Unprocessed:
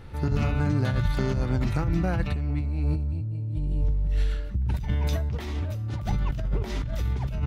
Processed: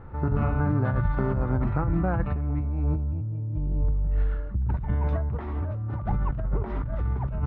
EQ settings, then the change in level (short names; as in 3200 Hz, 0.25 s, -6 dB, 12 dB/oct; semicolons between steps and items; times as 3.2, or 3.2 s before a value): synth low-pass 1200 Hz, resonance Q 1.7; air absorption 63 m; 0.0 dB